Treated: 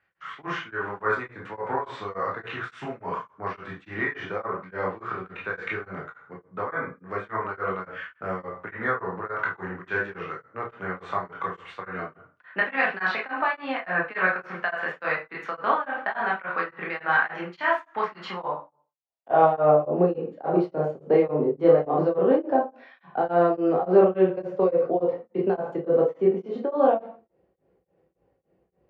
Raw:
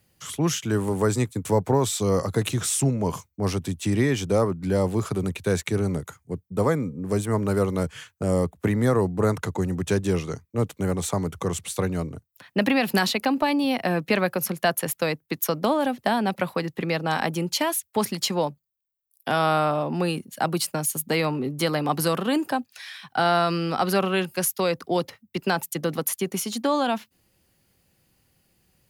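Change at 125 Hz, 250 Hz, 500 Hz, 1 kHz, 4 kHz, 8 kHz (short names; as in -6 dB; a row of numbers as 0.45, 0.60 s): -11.0 dB, -5.5 dB, +1.5 dB, +0.5 dB, -14.0 dB, under -35 dB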